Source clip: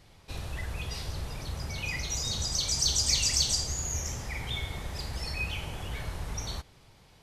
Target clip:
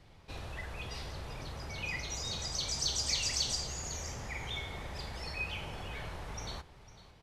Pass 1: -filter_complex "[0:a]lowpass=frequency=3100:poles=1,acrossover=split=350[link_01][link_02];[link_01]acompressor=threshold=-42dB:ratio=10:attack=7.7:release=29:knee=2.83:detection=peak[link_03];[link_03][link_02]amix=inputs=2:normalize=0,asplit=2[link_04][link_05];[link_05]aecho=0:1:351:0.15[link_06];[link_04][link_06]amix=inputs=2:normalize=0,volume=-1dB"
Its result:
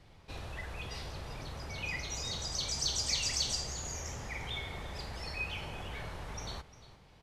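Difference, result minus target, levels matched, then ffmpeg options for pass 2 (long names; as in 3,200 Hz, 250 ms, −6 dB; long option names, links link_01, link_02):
echo 151 ms early
-filter_complex "[0:a]lowpass=frequency=3100:poles=1,acrossover=split=350[link_01][link_02];[link_01]acompressor=threshold=-42dB:ratio=10:attack=7.7:release=29:knee=2.83:detection=peak[link_03];[link_03][link_02]amix=inputs=2:normalize=0,asplit=2[link_04][link_05];[link_05]aecho=0:1:502:0.15[link_06];[link_04][link_06]amix=inputs=2:normalize=0,volume=-1dB"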